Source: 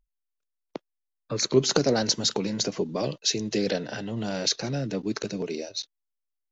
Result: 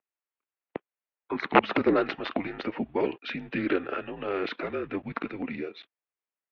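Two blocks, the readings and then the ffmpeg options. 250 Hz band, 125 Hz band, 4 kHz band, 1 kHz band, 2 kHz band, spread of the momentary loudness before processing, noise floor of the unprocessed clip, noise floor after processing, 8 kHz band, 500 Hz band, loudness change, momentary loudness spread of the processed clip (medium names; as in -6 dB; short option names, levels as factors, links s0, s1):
-1.0 dB, -10.0 dB, -13.5 dB, +7.0 dB, +4.5 dB, 12 LU, -83 dBFS, under -85 dBFS, no reading, -2.0 dB, -2.5 dB, 13 LU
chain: -af "aeval=exprs='(mod(3.98*val(0)+1,2)-1)/3.98':c=same,highpass=f=500:t=q:w=0.5412,highpass=f=500:t=q:w=1.307,lowpass=f=2800:t=q:w=0.5176,lowpass=f=2800:t=q:w=0.7071,lowpass=f=2800:t=q:w=1.932,afreqshift=-180,volume=1.78"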